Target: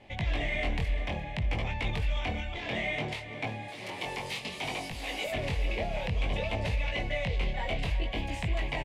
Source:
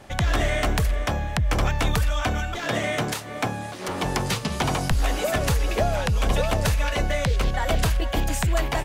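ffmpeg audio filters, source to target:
-filter_complex "[0:a]asettb=1/sr,asplit=3[s0][s1][s2];[s0]atrim=end=3.684[s3];[s1]atrim=start=3.68:end=5.32,asetpts=PTS-STARTPTS,afade=t=in:d=0.004:c=qsin,afade=t=out:st=1.636:d=0.004:c=qsin,aemphasis=mode=production:type=bsi[s4];[s2]atrim=start=5.316[s5];[s3][s4]acrossfade=d=0.004:c1=hsin:c2=qsin[s6];[s6][s5]acrossfade=d=0.004:c1=qsin:c2=hsin,alimiter=limit=0.178:level=0:latency=1:release=15,firequalizer=gain_entry='entry(880,0);entry(1400,-12);entry(2100,8);entry(6100,-10)':delay=0.05:min_phase=1,flanger=delay=18:depth=5.8:speed=0.6,lowpass=9300,aecho=1:1:347|750:0.178|0.119,volume=0.531"

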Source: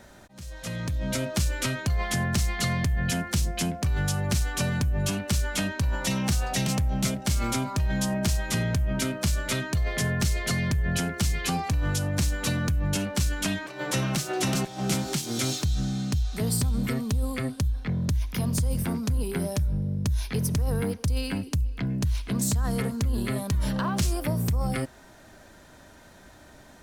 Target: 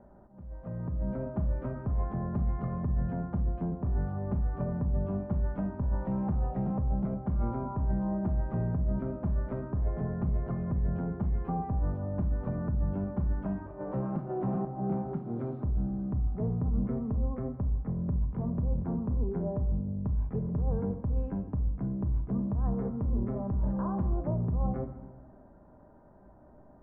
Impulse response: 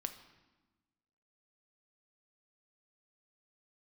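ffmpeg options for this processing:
-filter_complex "[0:a]lowpass=f=1000:w=0.5412,lowpass=f=1000:w=1.3066[s0];[1:a]atrim=start_sample=2205[s1];[s0][s1]afir=irnorm=-1:irlink=0,volume=0.75"

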